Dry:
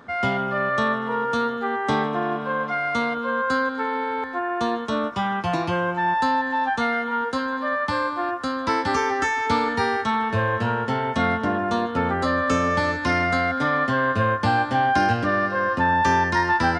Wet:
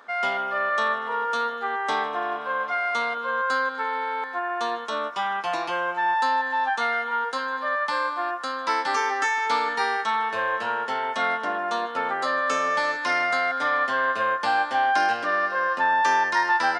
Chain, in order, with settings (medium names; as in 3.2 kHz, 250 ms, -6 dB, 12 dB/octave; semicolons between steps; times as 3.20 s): high-pass 610 Hz 12 dB/octave